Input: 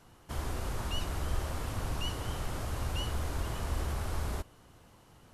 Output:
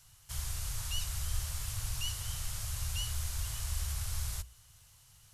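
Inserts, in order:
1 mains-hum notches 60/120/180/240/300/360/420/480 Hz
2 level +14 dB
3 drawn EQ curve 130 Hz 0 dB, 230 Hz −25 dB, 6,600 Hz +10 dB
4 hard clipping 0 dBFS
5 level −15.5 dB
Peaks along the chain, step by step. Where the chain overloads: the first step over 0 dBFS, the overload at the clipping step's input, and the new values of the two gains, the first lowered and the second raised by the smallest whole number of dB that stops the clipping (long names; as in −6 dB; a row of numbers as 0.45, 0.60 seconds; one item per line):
−21.0, −7.0, −5.5, −5.5, −21.0 dBFS
no step passes full scale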